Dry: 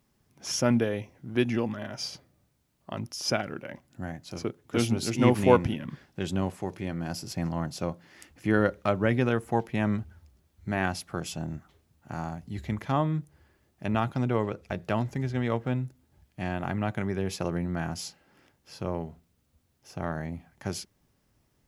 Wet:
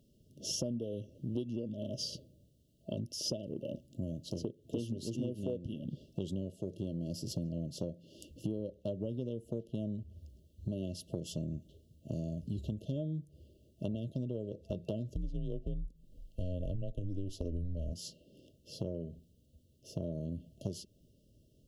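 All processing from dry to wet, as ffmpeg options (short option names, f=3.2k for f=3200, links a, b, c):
-filter_complex "[0:a]asettb=1/sr,asplit=3[a][b][c];[a]atrim=end=15.144[d];[b]atrim=start=15.14:end=17.93,asetpts=PTS-STARTPTS,afade=t=in:d=0.004:c=qsin,afade=t=out:st=2.786:d=0.004:c=qsin,lowshelf=f=160:g=9.5,afreqshift=-92[e];[c]atrim=start=17.926[f];[d][e]acrossfade=d=0.004:c1=hsin:c2=qsin[g];[g][f]acrossfade=d=0.004:c1=qsin:c2=hsin,afftfilt=real='re*(1-between(b*sr/4096,660,2700))':imag='im*(1-between(b*sr/4096,660,2700))':win_size=4096:overlap=0.75,highshelf=f=2.5k:g=-8,acompressor=threshold=-38dB:ratio=12,volume=4.5dB"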